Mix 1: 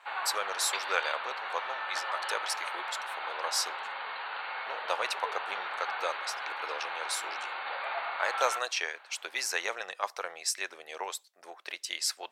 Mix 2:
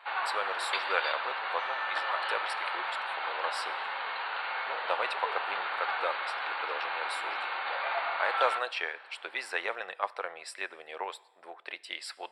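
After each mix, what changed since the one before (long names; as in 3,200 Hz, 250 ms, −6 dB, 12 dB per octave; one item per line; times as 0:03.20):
speech: add moving average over 7 samples
reverb: on, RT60 1.3 s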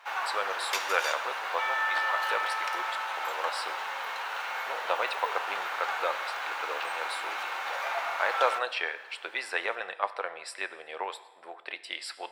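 speech: send +9.5 dB
first sound: remove linear-phase brick-wall low-pass 4,700 Hz
second sound +9.0 dB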